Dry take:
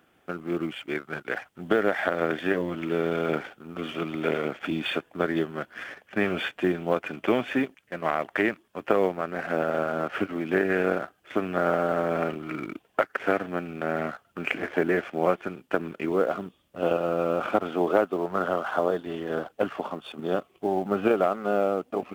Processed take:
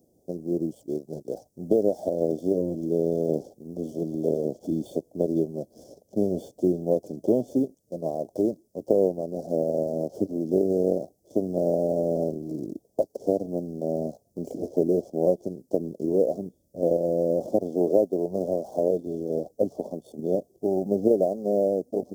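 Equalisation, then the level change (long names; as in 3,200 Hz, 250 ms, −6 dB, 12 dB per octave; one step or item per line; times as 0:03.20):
elliptic band-stop filter 590–5,500 Hz, stop band 50 dB
+3.0 dB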